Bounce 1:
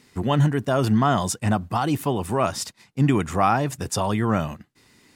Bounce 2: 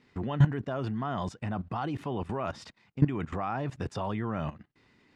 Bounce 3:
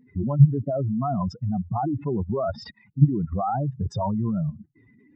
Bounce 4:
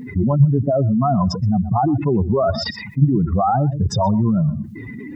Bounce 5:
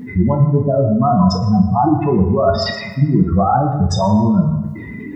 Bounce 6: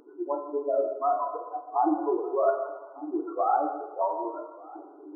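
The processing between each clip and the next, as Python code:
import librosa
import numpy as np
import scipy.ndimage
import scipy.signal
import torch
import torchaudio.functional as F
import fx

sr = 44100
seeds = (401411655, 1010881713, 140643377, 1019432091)

y1 = scipy.signal.sosfilt(scipy.signal.butter(2, 3100.0, 'lowpass', fs=sr, output='sos'), x)
y1 = fx.level_steps(y1, sr, step_db=16)
y2 = fx.spec_expand(y1, sr, power=3.2)
y2 = y2 * 10.0 ** (8.0 / 20.0)
y3 = y2 + 10.0 ** (-20.0 / 20.0) * np.pad(y2, (int(123 * sr / 1000.0), 0))[:len(y2)]
y3 = fx.env_flatten(y3, sr, amount_pct=50)
y4 = fx.rev_fdn(y3, sr, rt60_s=1.2, lf_ratio=0.7, hf_ratio=0.65, size_ms=95.0, drr_db=1.0)
y4 = y4 * 10.0 ** (1.5 / 20.0)
y5 = fx.brickwall_bandpass(y4, sr, low_hz=290.0, high_hz=1500.0)
y5 = y5 + 10.0 ** (-21.5 / 20.0) * np.pad(y5, (int(1199 * sr / 1000.0), 0))[:len(y5)]
y5 = y5 * 10.0 ** (-9.0 / 20.0)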